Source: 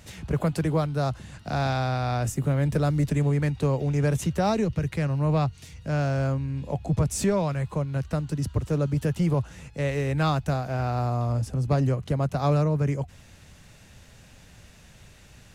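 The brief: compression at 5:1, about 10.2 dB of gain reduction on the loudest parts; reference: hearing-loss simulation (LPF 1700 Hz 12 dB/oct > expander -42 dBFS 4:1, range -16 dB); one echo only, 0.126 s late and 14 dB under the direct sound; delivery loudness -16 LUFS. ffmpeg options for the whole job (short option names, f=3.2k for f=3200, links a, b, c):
-af "acompressor=threshold=-31dB:ratio=5,lowpass=1.7k,aecho=1:1:126:0.2,agate=range=-16dB:threshold=-42dB:ratio=4,volume=18.5dB"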